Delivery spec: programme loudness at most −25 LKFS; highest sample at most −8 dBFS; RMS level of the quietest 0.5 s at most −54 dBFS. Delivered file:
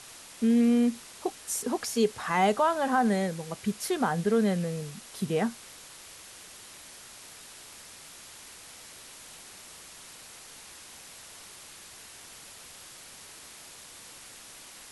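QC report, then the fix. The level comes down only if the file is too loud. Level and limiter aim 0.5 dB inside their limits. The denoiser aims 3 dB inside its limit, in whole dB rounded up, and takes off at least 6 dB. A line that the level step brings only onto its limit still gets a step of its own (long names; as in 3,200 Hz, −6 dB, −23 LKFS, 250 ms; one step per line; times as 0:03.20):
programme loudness −27.5 LKFS: in spec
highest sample −13.0 dBFS: in spec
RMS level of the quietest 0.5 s −48 dBFS: out of spec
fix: broadband denoise 9 dB, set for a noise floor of −48 dBFS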